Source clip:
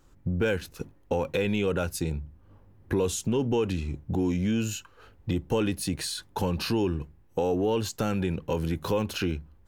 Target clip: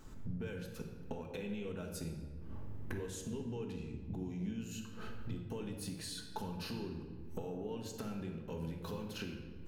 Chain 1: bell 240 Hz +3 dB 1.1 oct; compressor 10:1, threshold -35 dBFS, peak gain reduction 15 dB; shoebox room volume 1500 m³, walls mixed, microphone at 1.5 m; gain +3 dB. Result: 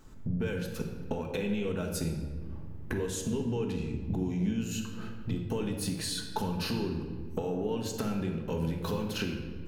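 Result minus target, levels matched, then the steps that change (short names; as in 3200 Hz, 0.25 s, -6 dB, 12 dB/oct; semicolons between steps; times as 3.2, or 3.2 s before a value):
compressor: peak gain reduction -10 dB
change: compressor 10:1, threshold -46 dBFS, peak gain reduction 25 dB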